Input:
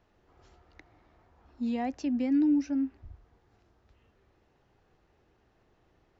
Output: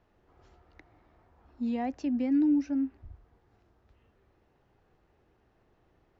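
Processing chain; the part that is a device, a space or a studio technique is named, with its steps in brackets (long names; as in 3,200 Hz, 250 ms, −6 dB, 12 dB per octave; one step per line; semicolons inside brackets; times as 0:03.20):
behind a face mask (high-shelf EQ 3,400 Hz −7 dB)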